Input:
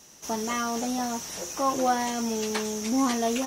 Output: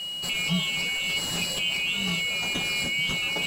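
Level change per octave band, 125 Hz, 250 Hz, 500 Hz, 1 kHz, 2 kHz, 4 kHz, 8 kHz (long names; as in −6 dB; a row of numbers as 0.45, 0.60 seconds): +11.0, −7.5, −11.5, −13.5, +11.5, +13.0, −2.5 decibels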